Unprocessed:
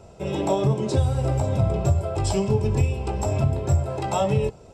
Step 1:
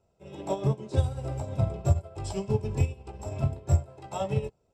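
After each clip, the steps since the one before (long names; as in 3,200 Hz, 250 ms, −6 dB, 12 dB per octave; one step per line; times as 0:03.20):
expander for the loud parts 2.5 to 1, over −31 dBFS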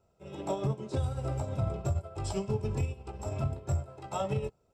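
parametric band 1,300 Hz +7 dB 0.21 octaves
brickwall limiter −22 dBFS, peak gain reduction 10 dB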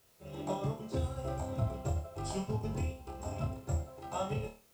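background noise white −66 dBFS
on a send: flutter between parallel walls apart 4.6 metres, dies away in 0.35 s
on the sum: level −3.5 dB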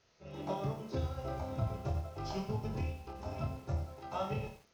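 Chebyshev low-pass with heavy ripple 6,500 Hz, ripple 3 dB
feedback echo at a low word length 87 ms, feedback 35%, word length 9 bits, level −11 dB
level +1 dB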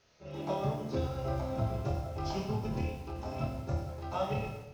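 convolution reverb RT60 1.2 s, pre-delay 3 ms, DRR 5 dB
level +2.5 dB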